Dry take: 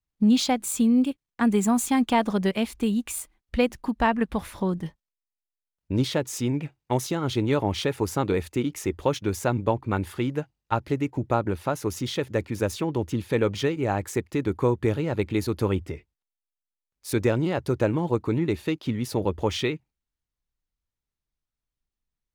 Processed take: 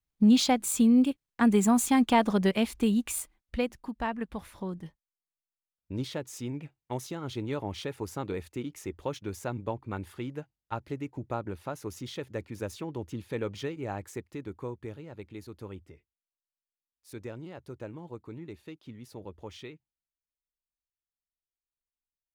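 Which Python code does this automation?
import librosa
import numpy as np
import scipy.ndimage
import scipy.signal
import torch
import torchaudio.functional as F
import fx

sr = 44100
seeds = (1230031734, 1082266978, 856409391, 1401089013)

y = fx.gain(x, sr, db=fx.line((3.2, -1.0), (3.8, -10.0), (13.95, -10.0), (15.07, -18.0)))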